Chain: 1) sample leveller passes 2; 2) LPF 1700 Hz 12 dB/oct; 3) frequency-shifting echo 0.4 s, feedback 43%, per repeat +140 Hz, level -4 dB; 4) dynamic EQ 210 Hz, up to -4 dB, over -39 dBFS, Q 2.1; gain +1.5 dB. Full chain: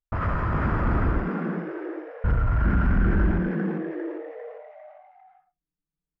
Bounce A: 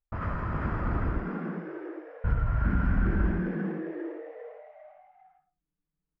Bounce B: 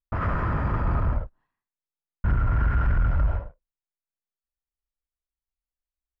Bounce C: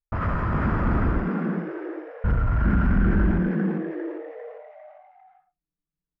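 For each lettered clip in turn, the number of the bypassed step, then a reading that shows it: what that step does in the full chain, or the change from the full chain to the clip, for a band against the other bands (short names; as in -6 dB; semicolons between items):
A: 1, crest factor change +3.0 dB; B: 3, crest factor change -1.5 dB; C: 4, momentary loudness spread change +1 LU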